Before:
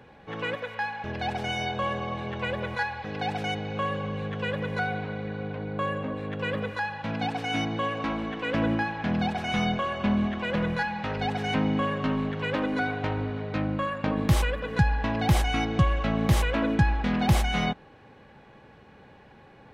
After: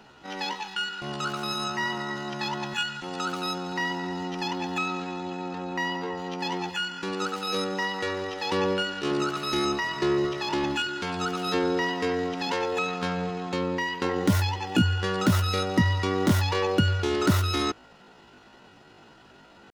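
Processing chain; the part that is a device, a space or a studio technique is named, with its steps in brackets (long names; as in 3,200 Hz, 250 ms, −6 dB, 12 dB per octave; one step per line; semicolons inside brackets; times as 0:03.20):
chipmunk voice (pitch shifter +9.5 semitones)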